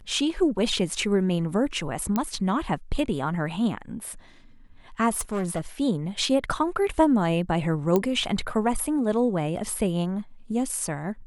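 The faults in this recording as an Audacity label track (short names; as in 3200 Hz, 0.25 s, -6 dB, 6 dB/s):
2.160000	2.160000	pop -12 dBFS
5.090000	5.610000	clipped -23 dBFS
7.960000	7.960000	pop -10 dBFS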